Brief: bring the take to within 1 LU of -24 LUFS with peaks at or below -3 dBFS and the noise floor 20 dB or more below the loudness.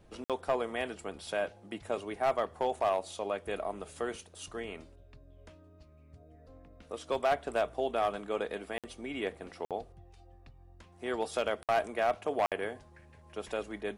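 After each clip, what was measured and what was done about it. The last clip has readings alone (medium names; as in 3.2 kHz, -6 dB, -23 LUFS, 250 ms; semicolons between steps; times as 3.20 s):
clipped samples 0.5%; clipping level -21.5 dBFS; dropouts 5; longest dropout 57 ms; loudness -34.5 LUFS; peak level -21.5 dBFS; loudness target -24.0 LUFS
-> clip repair -21.5 dBFS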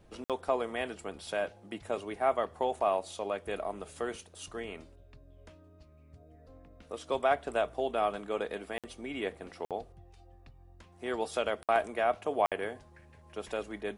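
clipped samples 0.0%; dropouts 5; longest dropout 57 ms
-> interpolate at 0.24/8.78/9.65/11.63/12.46 s, 57 ms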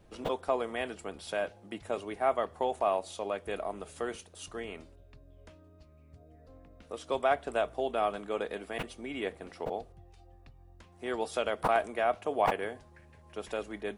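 dropouts 0; loudness -33.5 LUFS; peak level -13.5 dBFS; loudness target -24.0 LUFS
-> trim +9.5 dB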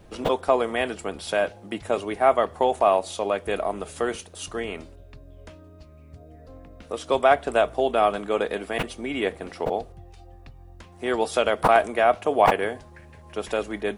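loudness -24.0 LUFS; peak level -4.0 dBFS; noise floor -48 dBFS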